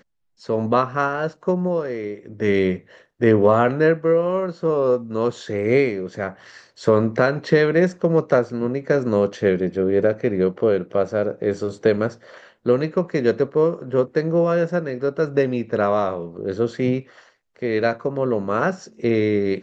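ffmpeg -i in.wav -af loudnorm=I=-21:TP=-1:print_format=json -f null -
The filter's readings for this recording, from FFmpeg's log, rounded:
"input_i" : "-21.0",
"input_tp" : "-3.4",
"input_lra" : "3.5",
"input_thresh" : "-31.3",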